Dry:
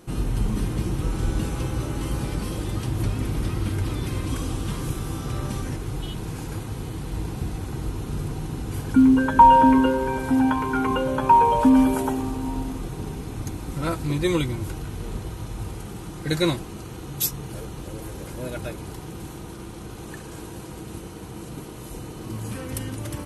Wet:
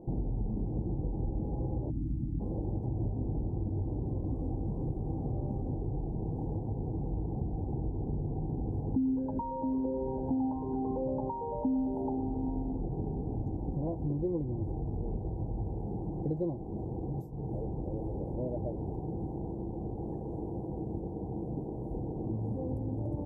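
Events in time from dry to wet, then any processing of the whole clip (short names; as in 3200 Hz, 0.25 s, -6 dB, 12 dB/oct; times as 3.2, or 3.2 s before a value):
1.9–2.4 spectral gain 330–1800 Hz -24 dB
whole clip: compressor 5:1, threshold -31 dBFS; elliptic low-pass 830 Hz, stop band 40 dB; gain +1.5 dB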